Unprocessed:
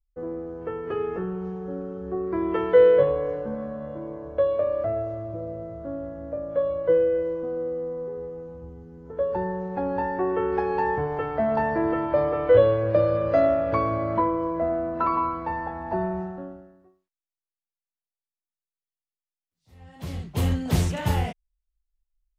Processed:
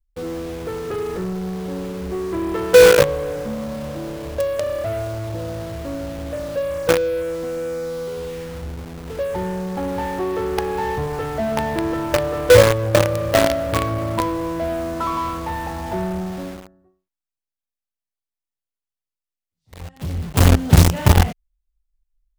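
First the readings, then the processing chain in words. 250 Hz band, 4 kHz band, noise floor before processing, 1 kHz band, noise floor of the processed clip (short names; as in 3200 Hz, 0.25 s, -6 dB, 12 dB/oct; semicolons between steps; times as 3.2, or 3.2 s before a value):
+5.0 dB, n/a, under -85 dBFS, +2.5 dB, under -85 dBFS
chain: low shelf 160 Hz +10 dB; in parallel at -4 dB: companded quantiser 2-bit; on the sum: gain -3 dB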